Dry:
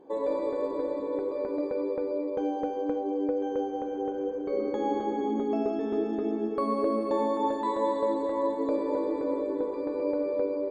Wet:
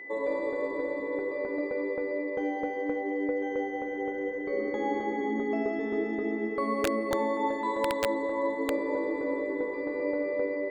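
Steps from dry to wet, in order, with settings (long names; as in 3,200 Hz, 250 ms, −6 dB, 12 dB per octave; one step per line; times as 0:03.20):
steady tone 2,000 Hz −39 dBFS
wrap-around overflow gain 17 dB
level −1.5 dB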